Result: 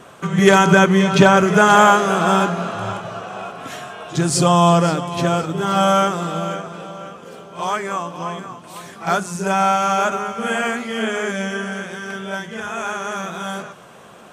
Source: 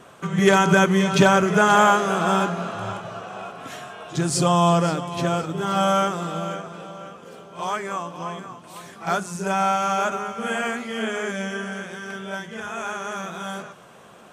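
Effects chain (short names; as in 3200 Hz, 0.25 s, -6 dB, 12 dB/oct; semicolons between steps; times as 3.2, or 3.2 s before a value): 0.7–1.36 high shelf 9500 Hz -> 5300 Hz -7 dB; gain +4.5 dB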